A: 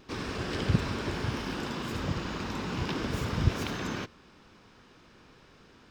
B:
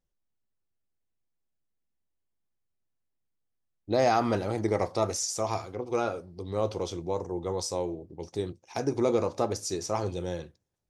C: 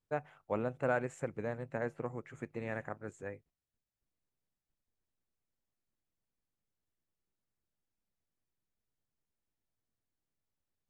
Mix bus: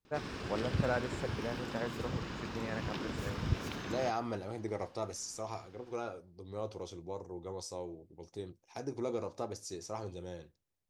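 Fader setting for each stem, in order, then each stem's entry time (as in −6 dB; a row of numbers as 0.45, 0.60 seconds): −7.0, −11.0, −1.5 decibels; 0.05, 0.00, 0.00 seconds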